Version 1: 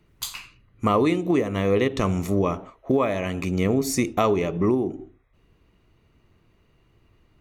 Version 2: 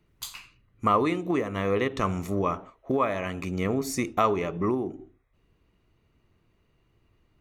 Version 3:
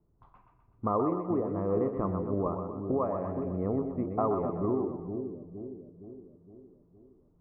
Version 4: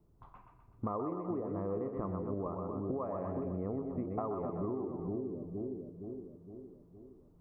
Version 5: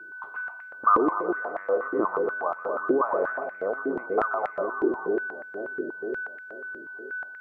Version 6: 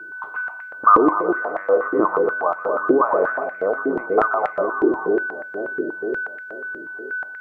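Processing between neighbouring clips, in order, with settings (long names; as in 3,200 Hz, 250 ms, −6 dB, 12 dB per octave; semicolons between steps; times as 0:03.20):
dynamic equaliser 1,300 Hz, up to +8 dB, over −38 dBFS, Q 1; level −6 dB
low-pass filter 1,000 Hz 24 dB per octave; echo with a time of its own for lows and highs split 490 Hz, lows 464 ms, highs 125 ms, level −6 dB; level −3.5 dB
downward compressor, threshold −37 dBFS, peak gain reduction 13 dB; level +3 dB
steady tone 1,500 Hz −57 dBFS; parametric band 1,400 Hz +11 dB 0.42 octaves; high-pass on a step sequencer 8.3 Hz 340–2,000 Hz; level +7 dB
convolution reverb, pre-delay 6 ms, DRR 16 dB; level +7 dB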